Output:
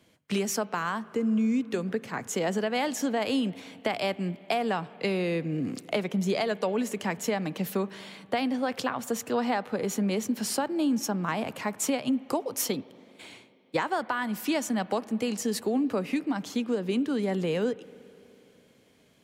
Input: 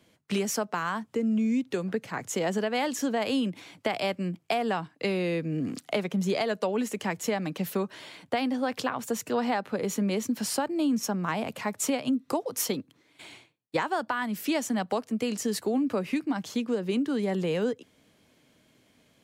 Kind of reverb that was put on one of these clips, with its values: spring tank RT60 3.3 s, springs 41/54 ms, chirp 60 ms, DRR 18.5 dB

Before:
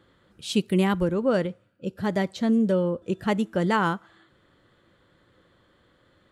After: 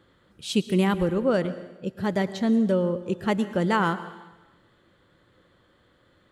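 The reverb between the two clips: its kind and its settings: plate-style reverb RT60 1.1 s, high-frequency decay 0.95×, pre-delay 95 ms, DRR 13.5 dB

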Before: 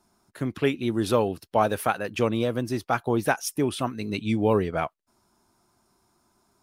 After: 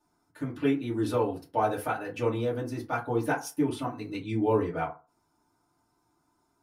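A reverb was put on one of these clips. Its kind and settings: FDN reverb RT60 0.32 s, low-frequency decay 0.95×, high-frequency decay 0.45×, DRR -6 dB; trim -12.5 dB

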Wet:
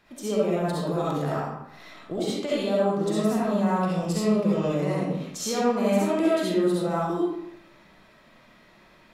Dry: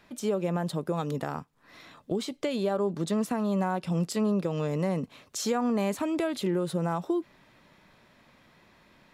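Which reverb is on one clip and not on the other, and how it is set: algorithmic reverb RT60 0.83 s, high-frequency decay 0.7×, pre-delay 25 ms, DRR -7.5 dB; trim -3.5 dB

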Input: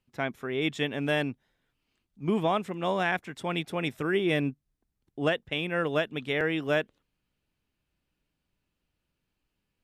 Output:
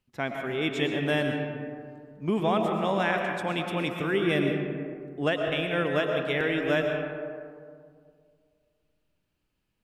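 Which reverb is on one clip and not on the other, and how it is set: algorithmic reverb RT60 2.2 s, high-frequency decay 0.35×, pre-delay 75 ms, DRR 2.5 dB

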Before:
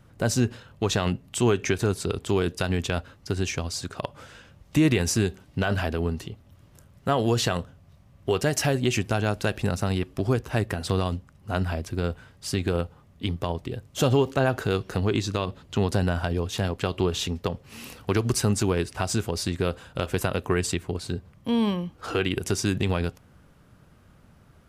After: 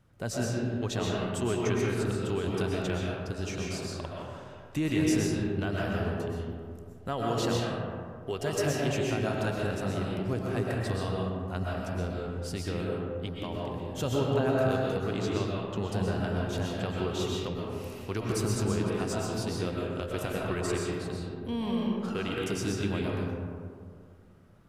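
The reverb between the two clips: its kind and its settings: algorithmic reverb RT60 2.2 s, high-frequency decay 0.35×, pre-delay 85 ms, DRR -3.5 dB; trim -10 dB

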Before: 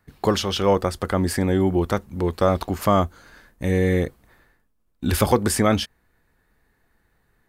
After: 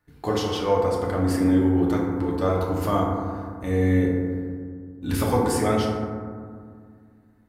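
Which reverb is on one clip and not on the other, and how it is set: FDN reverb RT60 2 s, low-frequency decay 1.4×, high-frequency decay 0.3×, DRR -4 dB; trim -9 dB

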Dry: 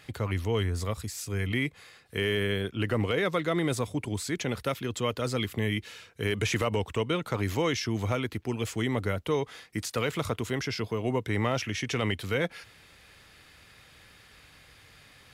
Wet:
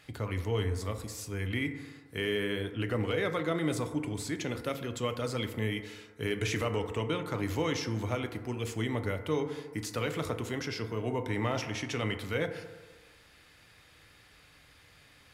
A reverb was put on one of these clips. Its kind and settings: FDN reverb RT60 1.4 s, low-frequency decay 0.8×, high-frequency decay 0.3×, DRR 6.5 dB; trim -4.5 dB

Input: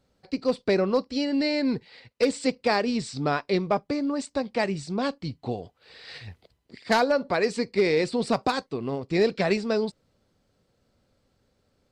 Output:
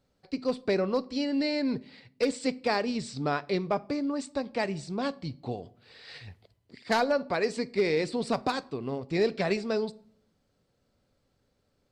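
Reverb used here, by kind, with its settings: simulated room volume 930 m³, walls furnished, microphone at 0.32 m; trim -4 dB

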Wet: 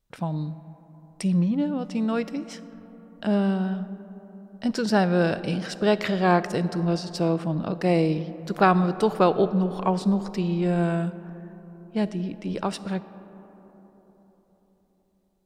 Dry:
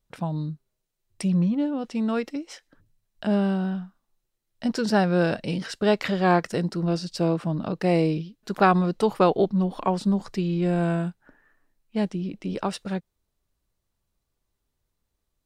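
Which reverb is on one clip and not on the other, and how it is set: algorithmic reverb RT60 4.4 s, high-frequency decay 0.3×, pre-delay 10 ms, DRR 14 dB

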